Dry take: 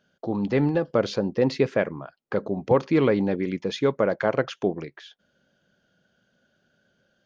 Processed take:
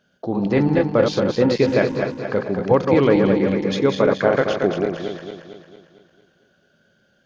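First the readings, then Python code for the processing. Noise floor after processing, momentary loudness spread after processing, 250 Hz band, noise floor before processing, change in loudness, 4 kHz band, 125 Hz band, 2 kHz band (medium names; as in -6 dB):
-62 dBFS, 10 LU, +6.0 dB, -71 dBFS, +5.5 dB, +6.0 dB, +5.5 dB, +6.0 dB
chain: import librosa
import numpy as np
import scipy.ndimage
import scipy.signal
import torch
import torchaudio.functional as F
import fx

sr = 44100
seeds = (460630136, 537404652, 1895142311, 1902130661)

y = fx.reverse_delay_fb(x, sr, ms=113, feedback_pct=71, wet_db=-4.0)
y = y * librosa.db_to_amplitude(3.5)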